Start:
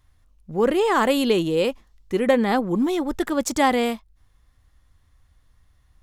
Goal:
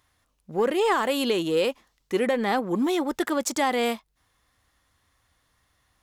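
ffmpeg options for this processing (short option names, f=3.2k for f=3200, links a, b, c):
-filter_complex "[0:a]highpass=f=400:p=1,asplit=2[a][b];[b]asoftclip=type=tanh:threshold=-25dB,volume=-8dB[c];[a][c]amix=inputs=2:normalize=0,alimiter=limit=-14.5dB:level=0:latency=1:release=241"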